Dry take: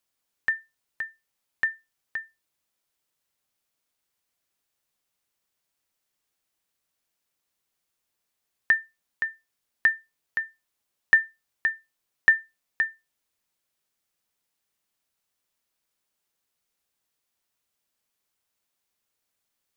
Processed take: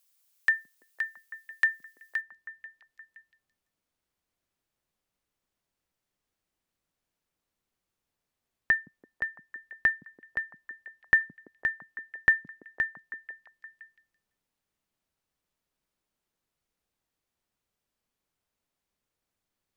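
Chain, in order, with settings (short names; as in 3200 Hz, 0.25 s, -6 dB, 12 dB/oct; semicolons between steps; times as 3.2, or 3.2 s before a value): tilt +3.5 dB/oct, from 2.2 s -2 dB/oct; delay with a stepping band-pass 0.168 s, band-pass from 200 Hz, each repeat 0.7 oct, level -6 dB; gain -1.5 dB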